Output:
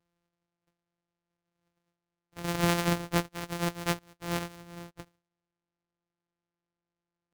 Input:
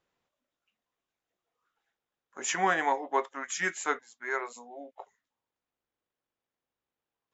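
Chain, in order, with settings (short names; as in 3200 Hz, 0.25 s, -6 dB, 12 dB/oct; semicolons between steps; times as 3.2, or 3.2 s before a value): sample sorter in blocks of 256 samples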